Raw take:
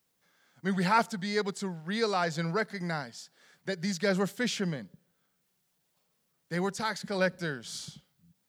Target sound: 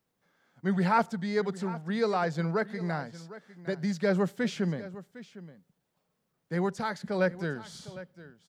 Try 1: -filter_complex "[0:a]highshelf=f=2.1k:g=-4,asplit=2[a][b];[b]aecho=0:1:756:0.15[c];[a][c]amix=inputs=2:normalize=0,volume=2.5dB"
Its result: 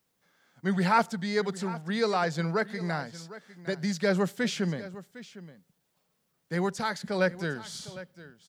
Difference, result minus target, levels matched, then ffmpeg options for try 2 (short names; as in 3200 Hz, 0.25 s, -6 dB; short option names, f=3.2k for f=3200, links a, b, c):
4000 Hz band +5.5 dB
-filter_complex "[0:a]highshelf=f=2.1k:g=-12,asplit=2[a][b];[b]aecho=0:1:756:0.15[c];[a][c]amix=inputs=2:normalize=0,volume=2.5dB"